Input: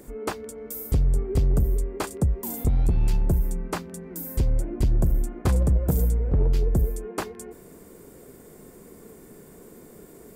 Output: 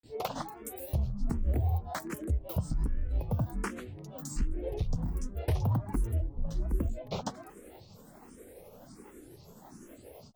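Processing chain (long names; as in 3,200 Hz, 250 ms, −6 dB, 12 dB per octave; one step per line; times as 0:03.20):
granular cloud 167 ms, grains 12 per second, pitch spread up and down by 12 semitones
downward compressor 2 to 1, threshold −28 dBFS, peak gain reduction 6 dB
frequency shifter mixed with the dry sound +1.3 Hz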